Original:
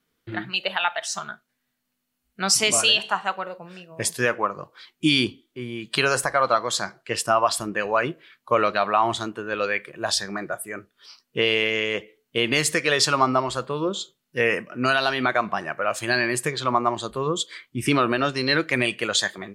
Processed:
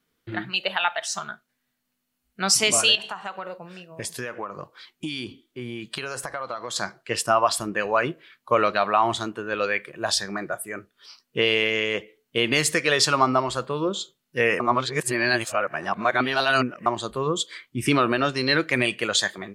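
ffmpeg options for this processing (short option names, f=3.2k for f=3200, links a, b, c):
-filter_complex "[0:a]asettb=1/sr,asplit=3[a][b][c];[a]atrim=end=2.954[d];[b]atrim=start=2.95:end=6.76,asetpts=PTS-STARTPTS,afade=t=in:d=0.004:c=qsin,afade=t=out:st=3.806:d=0.004:c=qsin,acompressor=threshold=-28dB:ratio=5:attack=3.2:release=140:knee=1:detection=peak[e];[c]atrim=start=6.756[f];[d][e]acrossfade=d=0.004:c1=hsin:c2=qsin[g];[g][f]acrossfade=d=0.004:c1=qsin:c2=hsin,asplit=3[h][i][j];[h]atrim=end=14.602[k];[i]atrim=start=14.598:end=16.862,asetpts=PTS-STARTPTS,areverse[l];[j]atrim=start=16.858[m];[k][l]acrossfade=d=0.004:c1=hsin:c2=hsin[n];[n][m]acrossfade=d=0.004:c1=hsin:c2=hsin"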